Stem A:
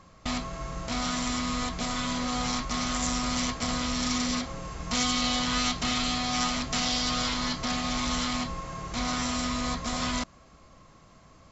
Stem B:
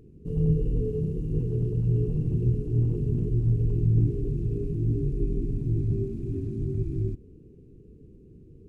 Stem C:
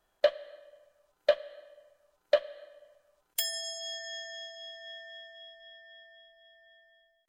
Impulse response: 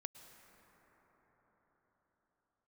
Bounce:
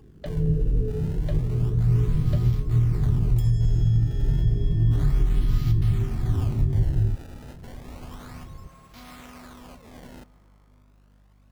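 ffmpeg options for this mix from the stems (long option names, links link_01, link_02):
-filter_complex "[0:a]aeval=exprs='val(0)+0.00891*(sin(2*PI*50*n/s)+sin(2*PI*2*50*n/s)/2+sin(2*PI*3*50*n/s)/3+sin(2*PI*4*50*n/s)/4+sin(2*PI*5*50*n/s)/5)':channel_layout=same,acrusher=samples=23:mix=1:aa=0.000001:lfo=1:lforange=36.8:lforate=0.31,volume=-17.5dB,asplit=2[link_01][link_02];[link_02]volume=-3dB[link_03];[1:a]asubboost=boost=4.5:cutoff=150,volume=-1dB[link_04];[2:a]acompressor=threshold=-46dB:ratio=1.5,volume=-6dB[link_05];[3:a]atrim=start_sample=2205[link_06];[link_03][link_06]afir=irnorm=-1:irlink=0[link_07];[link_01][link_04][link_05][link_07]amix=inputs=4:normalize=0,alimiter=limit=-12dB:level=0:latency=1:release=397"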